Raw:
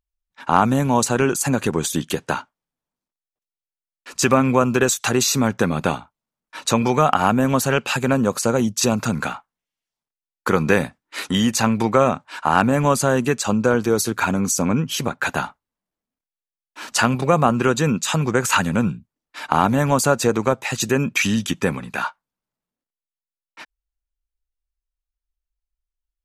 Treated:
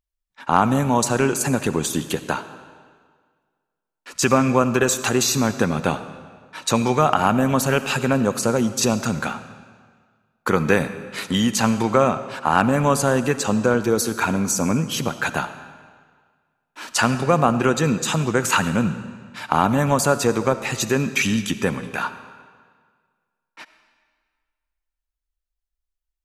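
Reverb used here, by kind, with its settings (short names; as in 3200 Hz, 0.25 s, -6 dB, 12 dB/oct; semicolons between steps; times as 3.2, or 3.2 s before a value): digital reverb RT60 1.7 s, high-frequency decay 0.9×, pre-delay 30 ms, DRR 12 dB; gain -1 dB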